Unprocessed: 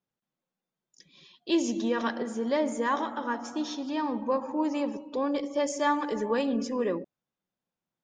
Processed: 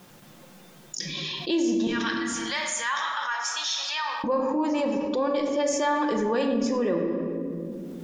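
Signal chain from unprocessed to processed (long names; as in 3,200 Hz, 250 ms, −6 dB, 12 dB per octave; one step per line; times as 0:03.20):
0:01.87–0:04.24: Bessel high-pass filter 1,800 Hz, order 4
rectangular room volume 650 cubic metres, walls mixed, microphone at 0.9 metres
envelope flattener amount 70%
level −3 dB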